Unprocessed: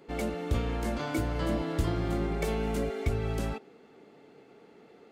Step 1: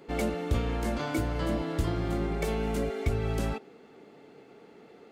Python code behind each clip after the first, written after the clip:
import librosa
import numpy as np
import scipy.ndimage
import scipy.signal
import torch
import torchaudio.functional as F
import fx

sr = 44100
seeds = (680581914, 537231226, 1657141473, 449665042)

y = fx.rider(x, sr, range_db=10, speed_s=0.5)
y = y * 10.0 ** (1.0 / 20.0)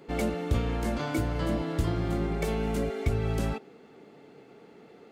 y = fx.peak_eq(x, sr, hz=140.0, db=3.0, octaves=1.2)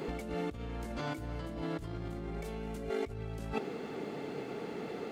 y = fx.over_compress(x, sr, threshold_db=-40.0, ratio=-1.0)
y = y * 10.0 ** (1.5 / 20.0)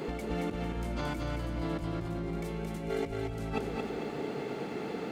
y = fx.echo_feedback(x, sr, ms=224, feedback_pct=39, wet_db=-3.5)
y = y * 10.0 ** (2.0 / 20.0)